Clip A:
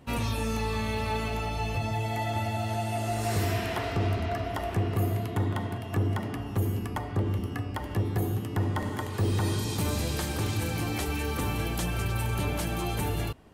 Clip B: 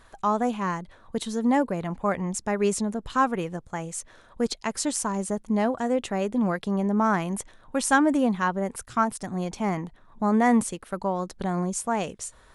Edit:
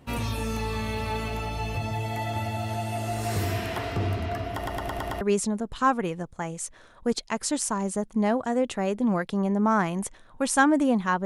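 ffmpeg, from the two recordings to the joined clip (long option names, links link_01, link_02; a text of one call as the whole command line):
ffmpeg -i cue0.wav -i cue1.wav -filter_complex "[0:a]apad=whole_dur=11.25,atrim=end=11.25,asplit=6[link_01][link_02][link_03][link_04][link_05][link_06];[link_01]atrim=end=4.662[link_07];[link_02]atrim=start=4.548:end=4.662[link_08];[link_03]atrim=start=4.548:end=4.662[link_09];[link_04]atrim=start=4.548:end=4.662[link_10];[link_05]atrim=start=4.548:end=4.662[link_11];[link_06]atrim=start=4.548:end=4.662[link_12];[1:a]atrim=start=2.548:end=8.59[link_13];[link_07][link_08]acrossfade=duration=0.004:curve1=hsin:curve2=hsin[link_14];[link_14][link_09]acrossfade=duration=0.004:curve1=hsin:curve2=hsin[link_15];[link_15][link_10]acrossfade=duration=0.004:curve1=hsin:curve2=hsin[link_16];[link_16][link_11]acrossfade=duration=0.004:curve1=hsin:curve2=hsin[link_17];[link_17][link_12]acrossfade=duration=0.004:curve1=hsin:curve2=hsin[link_18];[link_18][link_13]acrossfade=duration=0.004:curve1=hsin:curve2=hsin" out.wav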